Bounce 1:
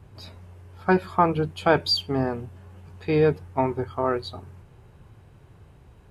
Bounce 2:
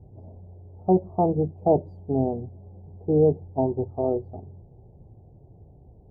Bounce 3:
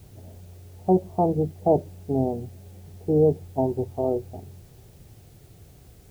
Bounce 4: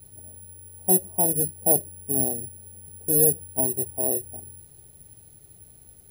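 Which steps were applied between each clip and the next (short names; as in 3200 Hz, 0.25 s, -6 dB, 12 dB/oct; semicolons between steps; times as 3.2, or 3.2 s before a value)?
elliptic low-pass 760 Hz, stop band 50 dB; gain +1.5 dB
requantised 10-bit, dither triangular
careless resampling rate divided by 4×, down filtered, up zero stuff; gain -6.5 dB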